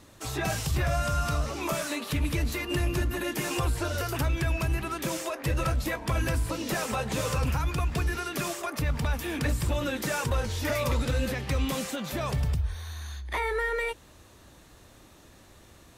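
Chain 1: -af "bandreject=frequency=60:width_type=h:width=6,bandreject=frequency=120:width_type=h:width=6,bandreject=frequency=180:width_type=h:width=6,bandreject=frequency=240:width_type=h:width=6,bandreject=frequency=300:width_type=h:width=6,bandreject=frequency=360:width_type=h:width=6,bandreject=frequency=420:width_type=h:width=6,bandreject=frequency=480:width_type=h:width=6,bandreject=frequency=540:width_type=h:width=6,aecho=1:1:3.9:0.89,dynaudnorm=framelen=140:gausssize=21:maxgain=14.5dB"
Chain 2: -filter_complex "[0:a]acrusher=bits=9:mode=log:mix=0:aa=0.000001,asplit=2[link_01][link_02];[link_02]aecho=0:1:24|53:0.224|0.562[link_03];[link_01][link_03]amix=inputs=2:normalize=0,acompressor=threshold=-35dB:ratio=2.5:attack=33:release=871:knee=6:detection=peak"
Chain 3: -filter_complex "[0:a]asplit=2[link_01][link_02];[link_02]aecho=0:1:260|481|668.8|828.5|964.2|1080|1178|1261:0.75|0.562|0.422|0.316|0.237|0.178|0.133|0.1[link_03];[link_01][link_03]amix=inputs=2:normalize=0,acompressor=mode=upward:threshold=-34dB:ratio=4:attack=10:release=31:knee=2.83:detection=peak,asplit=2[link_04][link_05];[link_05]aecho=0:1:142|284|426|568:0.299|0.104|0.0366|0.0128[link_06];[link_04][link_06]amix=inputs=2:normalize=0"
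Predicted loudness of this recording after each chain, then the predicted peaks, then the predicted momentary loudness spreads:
−16.5, −35.5, −26.0 LKFS; −2.0, −23.0, −10.0 dBFS; 8, 15, 5 LU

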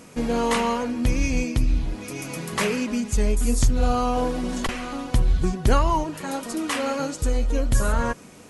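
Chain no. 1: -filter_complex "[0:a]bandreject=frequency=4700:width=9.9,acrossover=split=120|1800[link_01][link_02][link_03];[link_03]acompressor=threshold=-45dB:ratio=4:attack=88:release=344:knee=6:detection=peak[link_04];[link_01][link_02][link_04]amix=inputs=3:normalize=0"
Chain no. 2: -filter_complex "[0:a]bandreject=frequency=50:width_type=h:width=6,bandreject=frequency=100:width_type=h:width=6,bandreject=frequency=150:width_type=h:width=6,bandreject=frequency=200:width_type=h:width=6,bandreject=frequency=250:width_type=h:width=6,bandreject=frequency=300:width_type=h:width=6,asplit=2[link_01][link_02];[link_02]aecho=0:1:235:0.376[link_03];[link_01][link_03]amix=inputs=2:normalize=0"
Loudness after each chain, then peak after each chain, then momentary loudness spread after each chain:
−25.0, −24.5 LKFS; −7.0, −6.0 dBFS; 8, 6 LU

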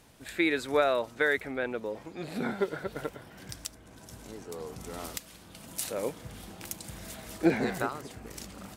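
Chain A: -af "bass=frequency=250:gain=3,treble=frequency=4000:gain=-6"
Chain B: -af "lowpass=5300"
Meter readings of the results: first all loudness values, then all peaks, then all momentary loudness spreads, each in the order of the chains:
−31.5, −32.0 LKFS; −10.0, −11.0 dBFS; 19, 19 LU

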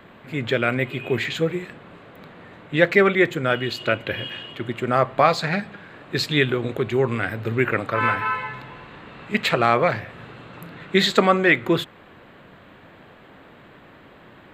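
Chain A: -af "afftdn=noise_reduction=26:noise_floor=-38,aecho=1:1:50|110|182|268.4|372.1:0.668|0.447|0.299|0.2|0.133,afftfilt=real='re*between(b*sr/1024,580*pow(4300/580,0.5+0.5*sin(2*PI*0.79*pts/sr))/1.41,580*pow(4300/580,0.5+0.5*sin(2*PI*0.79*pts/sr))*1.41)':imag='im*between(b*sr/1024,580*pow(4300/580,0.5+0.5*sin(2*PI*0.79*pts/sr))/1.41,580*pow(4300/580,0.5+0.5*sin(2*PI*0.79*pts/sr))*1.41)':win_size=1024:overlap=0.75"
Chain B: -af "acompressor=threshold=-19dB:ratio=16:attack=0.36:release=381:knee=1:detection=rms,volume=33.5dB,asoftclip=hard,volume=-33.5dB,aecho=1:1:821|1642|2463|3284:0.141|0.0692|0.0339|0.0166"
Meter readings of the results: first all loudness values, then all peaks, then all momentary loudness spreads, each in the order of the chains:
−26.5, −37.5 LKFS; −7.0, −31.5 dBFS; 19, 12 LU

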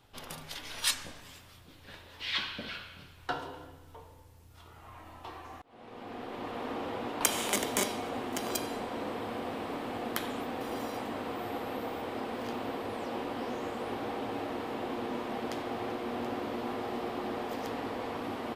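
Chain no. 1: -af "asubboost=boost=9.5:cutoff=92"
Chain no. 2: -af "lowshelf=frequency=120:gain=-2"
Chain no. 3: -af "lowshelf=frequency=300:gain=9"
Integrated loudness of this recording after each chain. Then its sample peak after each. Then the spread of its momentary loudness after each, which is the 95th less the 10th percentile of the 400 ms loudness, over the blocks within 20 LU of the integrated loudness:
−36.5, −36.0, −33.5 LKFS; −4.5, −5.0, −4.5 dBFS; 15, 19, 17 LU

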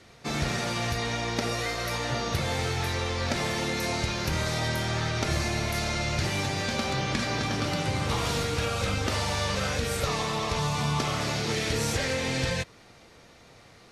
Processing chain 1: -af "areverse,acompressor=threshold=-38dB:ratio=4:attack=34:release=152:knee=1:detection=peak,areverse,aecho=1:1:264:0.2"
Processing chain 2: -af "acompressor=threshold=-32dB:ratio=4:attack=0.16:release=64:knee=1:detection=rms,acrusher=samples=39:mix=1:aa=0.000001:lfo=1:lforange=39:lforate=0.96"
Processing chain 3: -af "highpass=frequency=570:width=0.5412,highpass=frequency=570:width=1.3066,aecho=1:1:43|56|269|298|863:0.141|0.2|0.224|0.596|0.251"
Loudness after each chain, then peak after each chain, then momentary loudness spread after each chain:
−36.5, −38.0, −28.5 LKFS; −19.5, −27.5, −14.5 dBFS; 2, 2, 2 LU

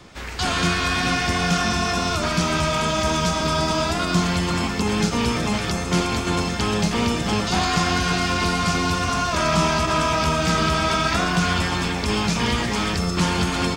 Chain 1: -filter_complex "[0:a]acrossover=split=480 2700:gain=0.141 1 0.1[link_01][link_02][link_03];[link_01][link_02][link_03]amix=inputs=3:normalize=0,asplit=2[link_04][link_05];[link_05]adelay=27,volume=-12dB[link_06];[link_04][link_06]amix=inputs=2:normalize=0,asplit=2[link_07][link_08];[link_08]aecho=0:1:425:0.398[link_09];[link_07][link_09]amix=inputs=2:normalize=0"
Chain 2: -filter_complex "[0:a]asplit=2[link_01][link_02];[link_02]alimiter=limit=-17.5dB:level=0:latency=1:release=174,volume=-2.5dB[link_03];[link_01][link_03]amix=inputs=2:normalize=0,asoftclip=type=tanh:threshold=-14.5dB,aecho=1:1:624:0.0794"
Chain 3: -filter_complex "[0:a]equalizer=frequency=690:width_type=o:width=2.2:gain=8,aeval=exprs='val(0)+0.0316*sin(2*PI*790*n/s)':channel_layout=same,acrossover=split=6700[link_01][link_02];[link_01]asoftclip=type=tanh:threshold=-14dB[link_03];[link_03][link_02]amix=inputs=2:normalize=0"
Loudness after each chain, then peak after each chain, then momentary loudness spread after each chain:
−24.5, −20.5, −19.5 LKFS; −10.5, −14.0, −12.5 dBFS; 6, 2, 3 LU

